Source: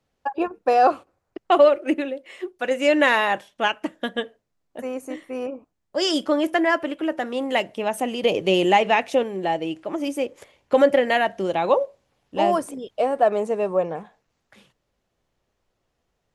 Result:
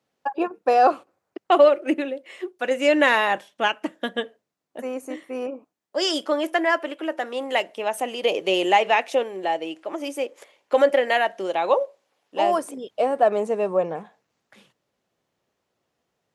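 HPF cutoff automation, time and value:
5.5 s 180 Hz
6.2 s 390 Hz
12.45 s 390 Hz
13.01 s 140 Hz

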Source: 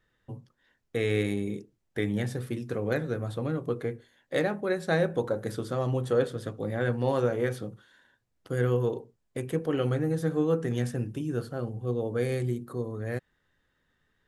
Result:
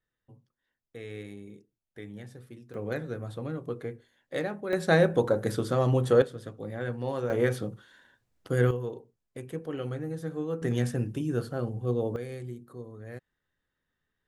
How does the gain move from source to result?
-14 dB
from 2.74 s -4.5 dB
from 4.73 s +4 dB
from 6.22 s -5.5 dB
from 7.3 s +3 dB
from 8.71 s -7 dB
from 10.62 s +1.5 dB
from 12.16 s -9.5 dB

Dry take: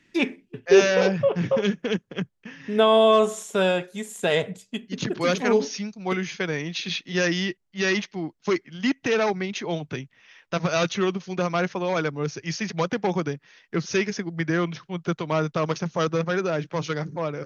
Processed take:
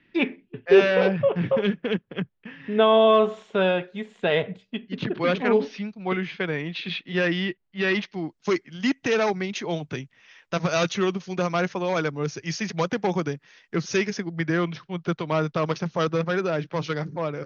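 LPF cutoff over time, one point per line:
LPF 24 dB/oct
7.88 s 3600 Hz
8.37 s 8800 Hz
13.84 s 8800 Hz
14.39 s 5400 Hz

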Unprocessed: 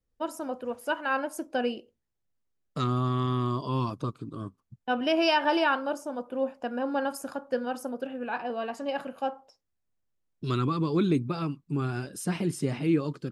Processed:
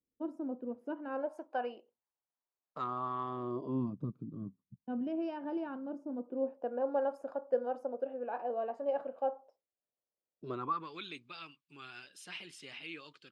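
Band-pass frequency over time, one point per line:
band-pass, Q 2.1
1.04 s 280 Hz
1.44 s 910 Hz
3.2 s 910 Hz
3.93 s 190 Hz
5.8 s 190 Hz
6.82 s 570 Hz
10.52 s 570 Hz
11.01 s 3000 Hz

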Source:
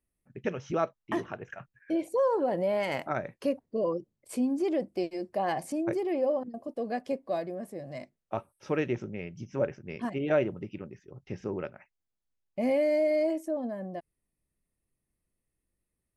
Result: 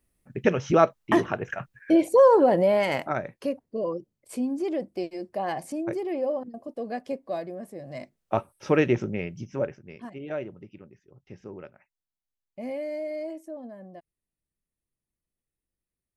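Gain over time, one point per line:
2.37 s +10 dB
3.5 s 0 dB
7.79 s 0 dB
8.35 s +8 dB
9.14 s +8 dB
9.67 s 0 dB
10.03 s -7 dB

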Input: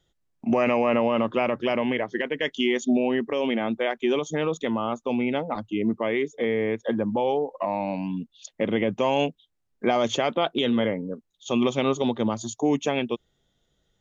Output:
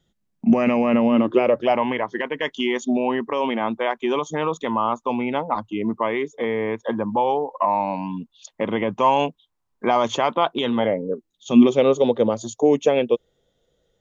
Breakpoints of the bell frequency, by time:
bell +13.5 dB 0.59 oct
1.05 s 200 Hz
1.84 s 1000 Hz
10.72 s 1000 Hz
11.51 s 180 Hz
11.79 s 500 Hz

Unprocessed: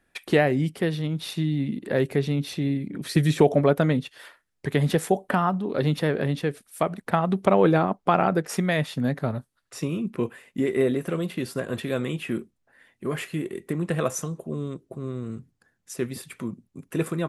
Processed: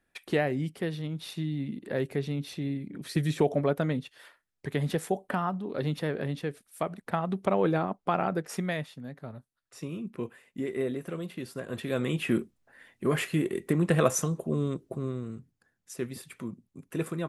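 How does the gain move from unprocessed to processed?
8.71 s -7 dB
9.02 s -17 dB
9.95 s -8.5 dB
11.58 s -8.5 dB
12.26 s +2 dB
14.93 s +2 dB
15.33 s -5.5 dB

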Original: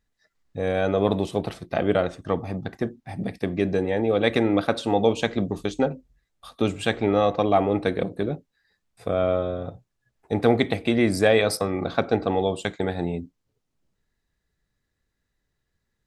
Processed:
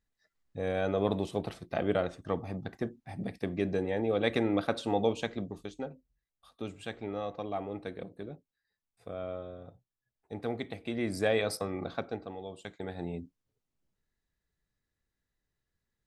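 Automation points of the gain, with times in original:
5.01 s -7.5 dB
5.81 s -16 dB
10.71 s -16 dB
11.27 s -9.5 dB
11.84 s -9.5 dB
12.38 s -20 dB
13.22 s -8 dB

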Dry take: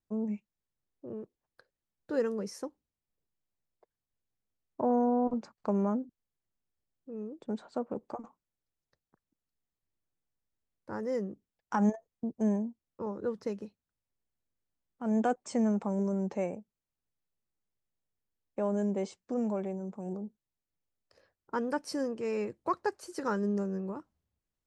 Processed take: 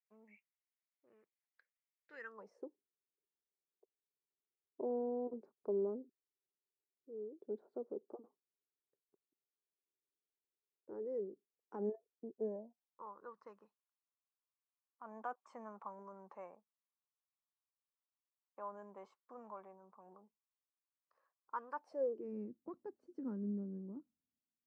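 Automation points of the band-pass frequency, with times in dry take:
band-pass, Q 5.6
2.19 s 2100 Hz
2.63 s 400 Hz
12.36 s 400 Hz
13.05 s 1100 Hz
21.74 s 1100 Hz
22.33 s 250 Hz

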